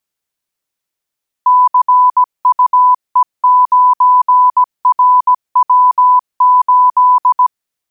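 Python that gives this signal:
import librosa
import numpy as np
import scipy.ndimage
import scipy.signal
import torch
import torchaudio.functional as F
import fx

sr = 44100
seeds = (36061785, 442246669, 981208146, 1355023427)

y = fx.morse(sr, text='CUE9RW8', wpm=17, hz=998.0, level_db=-4.5)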